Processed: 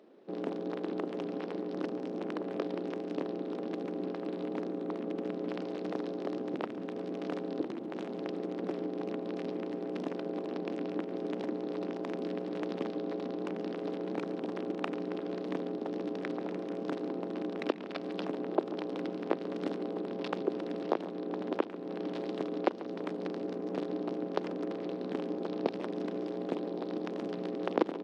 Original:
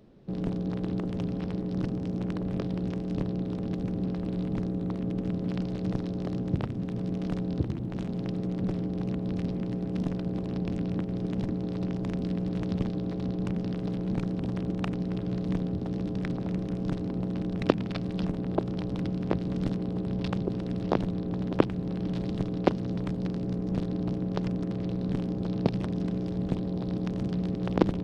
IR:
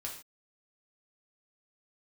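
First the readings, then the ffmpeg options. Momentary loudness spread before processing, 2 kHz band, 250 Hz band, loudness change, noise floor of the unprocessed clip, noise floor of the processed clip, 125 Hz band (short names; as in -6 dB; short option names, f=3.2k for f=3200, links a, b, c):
3 LU, -0.5 dB, -6.5 dB, -5.5 dB, -34 dBFS, -40 dBFS, -18.0 dB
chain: -filter_complex "[0:a]highpass=f=300:w=0.5412,highpass=f=300:w=1.3066,tremolo=f=27:d=0.261,alimiter=limit=-17dB:level=0:latency=1:release=383,highshelf=f=4.6k:g=-11,asplit=2[a][b];[b]adelay=139.9,volume=-16dB,highshelf=f=4k:g=-3.15[c];[a][c]amix=inputs=2:normalize=0,volume=3.5dB"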